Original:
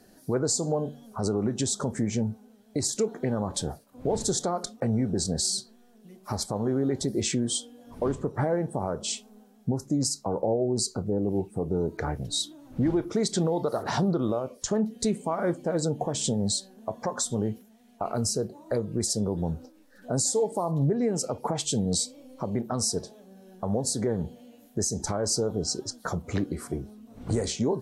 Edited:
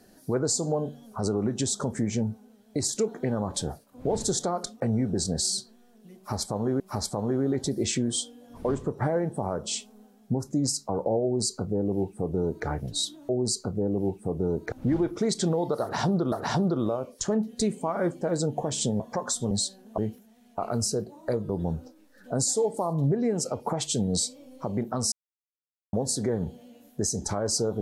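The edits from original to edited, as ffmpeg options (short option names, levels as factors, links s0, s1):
-filter_complex "[0:a]asplit=11[s0][s1][s2][s3][s4][s5][s6][s7][s8][s9][s10];[s0]atrim=end=6.802[s11];[s1]atrim=start=6.168:end=12.662[s12];[s2]atrim=start=10.598:end=12.032[s13];[s3]atrim=start=12.658:end=14.262[s14];[s4]atrim=start=13.748:end=16.432[s15];[s5]atrim=start=16.898:end=17.412[s16];[s6]atrim=start=16.428:end=16.902[s17];[s7]atrim=start=17.408:end=18.922[s18];[s8]atrim=start=19.268:end=22.9,asetpts=PTS-STARTPTS,afade=t=out:st=3.628:d=0.004:c=hsin[s19];[s9]atrim=start=22.9:end=23.71,asetpts=PTS-STARTPTS,volume=0[s20];[s10]atrim=start=23.71,asetpts=PTS-STARTPTS,afade=t=in:d=0.004:c=hsin[s21];[s11][s12]acrossfade=d=0.004:c1=hsin:c2=hsin[s22];[s22][s13]acrossfade=d=0.004:c1=hsin:c2=hsin[s23];[s23][s14]acrossfade=d=0.004:c1=hsin:c2=hsin[s24];[s24][s15]acrossfade=d=0.004:c1=hsin:c2=hsin[s25];[s25][s16]acrossfade=d=0.004:c1=hsin:c2=hsin[s26];[s26][s17]acrossfade=d=0.004:c1=hsin:c2=hsin[s27];[s27][s18]acrossfade=d=0.004:c1=hsin:c2=hsin[s28];[s19][s20][s21]concat=n=3:v=0:a=1[s29];[s28][s29]acrossfade=d=0.004:c1=hsin:c2=hsin"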